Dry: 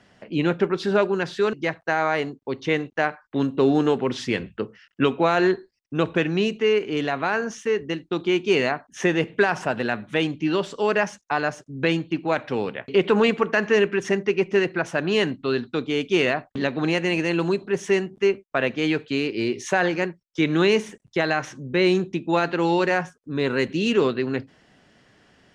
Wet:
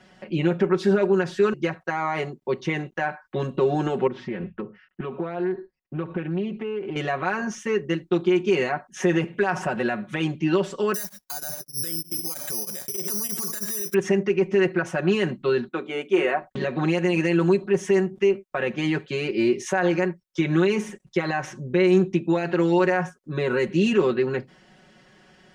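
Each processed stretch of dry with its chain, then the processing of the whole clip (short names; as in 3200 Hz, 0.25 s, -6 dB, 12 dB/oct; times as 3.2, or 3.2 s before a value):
4.07–6.96 Bessel low-pass 1400 Hz + compressor 5:1, threshold -28 dBFS + Doppler distortion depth 0.15 ms
10.94–13.94 careless resampling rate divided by 8×, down filtered, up zero stuff + beating tremolo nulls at 3.2 Hz
15.68–16.42 HPF 330 Hz + bell 5000 Hz -14.5 dB 1.1 oct + notches 60/120/180/240/300/360/420 Hz
whole clip: limiter -14.5 dBFS; comb 5.4 ms, depth 91%; dynamic EQ 3900 Hz, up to -7 dB, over -45 dBFS, Q 1.3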